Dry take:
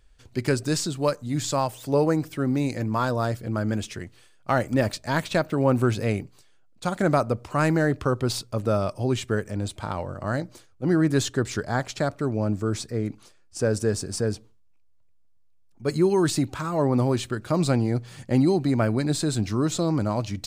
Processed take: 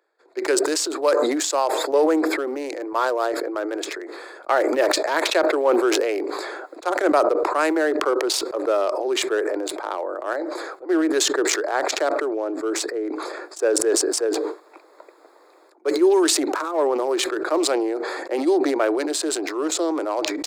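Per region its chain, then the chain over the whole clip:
0:10.33–0:10.89: low-shelf EQ 390 Hz −5 dB + downward compressor 12 to 1, threshold −31 dBFS
whole clip: adaptive Wiener filter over 15 samples; Butterworth high-pass 320 Hz 72 dB per octave; level that may fall only so fast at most 24 dB per second; level +4 dB

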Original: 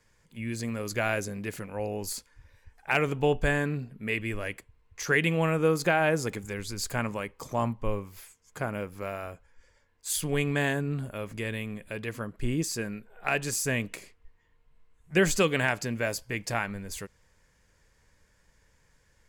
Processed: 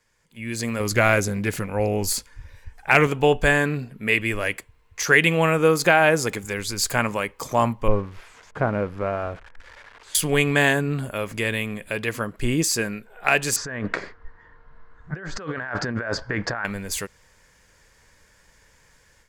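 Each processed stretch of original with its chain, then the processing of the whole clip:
0:00.80–0:03.07: low-shelf EQ 180 Hz +10 dB + highs frequency-modulated by the lows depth 0.15 ms
0:07.88–0:10.15: spike at every zero crossing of −29 dBFS + low-pass filter 1,600 Hz + spectral tilt −1.5 dB per octave
0:13.56–0:16.65: low-pass filter 4,900 Hz 24 dB per octave + high shelf with overshoot 2,000 Hz −8 dB, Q 3 + compressor whose output falls as the input rises −37 dBFS
whole clip: low-shelf EQ 400 Hz −6.5 dB; automatic gain control gain up to 11 dB

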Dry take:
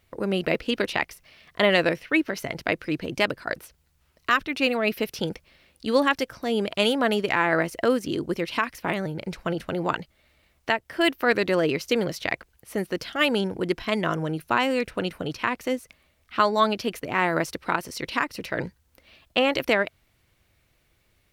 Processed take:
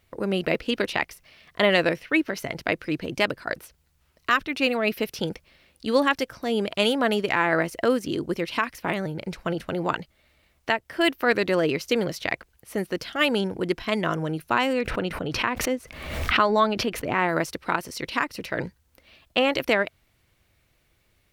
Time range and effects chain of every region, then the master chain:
0:14.73–0:17.29: high-shelf EQ 4,400 Hz −10 dB + background raised ahead of every attack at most 52 dB per second
whole clip: no processing

